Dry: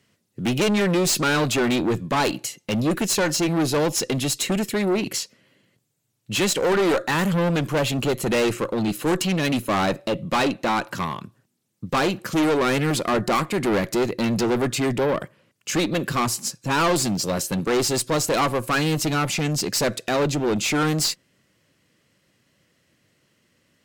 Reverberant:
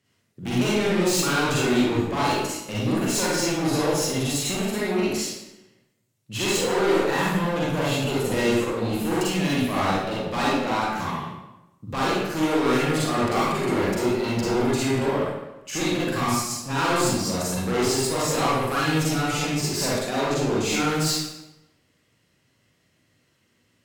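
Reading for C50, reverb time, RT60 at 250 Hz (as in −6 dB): −4.0 dB, 0.95 s, 1.0 s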